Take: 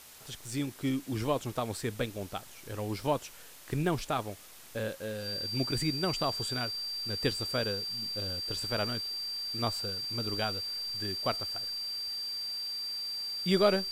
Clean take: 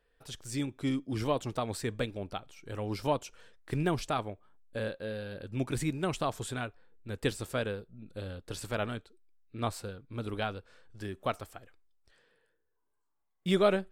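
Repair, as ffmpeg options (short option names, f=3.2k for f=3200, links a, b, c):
-af "bandreject=f=4.7k:w=30,afwtdn=0.0028"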